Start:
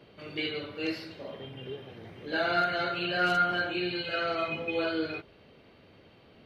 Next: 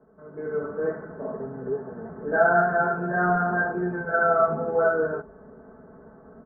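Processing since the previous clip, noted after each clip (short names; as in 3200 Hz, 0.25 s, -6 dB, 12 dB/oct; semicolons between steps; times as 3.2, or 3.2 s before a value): steep low-pass 1600 Hz 72 dB/oct; AGC gain up to 12 dB; comb 4.6 ms, depth 83%; gain -4.5 dB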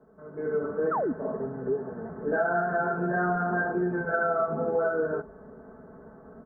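dynamic EQ 310 Hz, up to +4 dB, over -33 dBFS, Q 0.88; compressor 4:1, threshold -24 dBFS, peak gain reduction 9.5 dB; painted sound fall, 0.91–1.13, 220–1500 Hz -27 dBFS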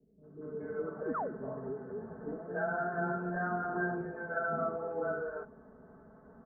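air absorption 88 m; bands offset in time lows, highs 0.23 s, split 430 Hz; ending taper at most 310 dB/s; gain -6.5 dB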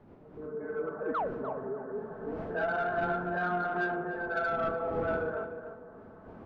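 wind noise 250 Hz -46 dBFS; overdrive pedal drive 13 dB, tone 1900 Hz, clips at -21 dBFS; tape echo 0.297 s, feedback 33%, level -6.5 dB, low-pass 1100 Hz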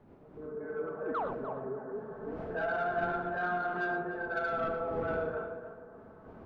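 reverb, pre-delay 3 ms, DRR 7.5 dB; gain -2.5 dB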